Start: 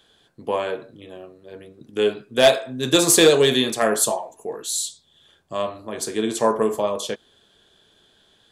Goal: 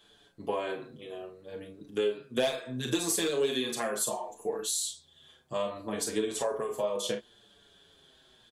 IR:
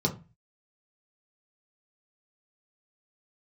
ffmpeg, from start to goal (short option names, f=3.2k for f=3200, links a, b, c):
-filter_complex "[0:a]aecho=1:1:34|48:0.398|0.251,acompressor=threshold=-25dB:ratio=5,asplit=2[a][b];[b]adelay=6.4,afreqshift=-0.68[c];[a][c]amix=inputs=2:normalize=1"